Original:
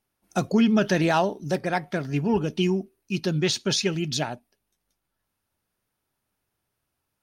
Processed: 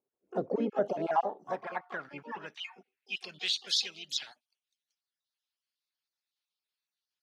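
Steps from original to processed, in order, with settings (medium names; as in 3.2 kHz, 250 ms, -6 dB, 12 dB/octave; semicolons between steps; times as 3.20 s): random holes in the spectrogram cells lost 35%; harmony voices +4 st -10 dB, +12 st -14 dB; band-pass sweep 430 Hz -> 4 kHz, 0.34–3.75 s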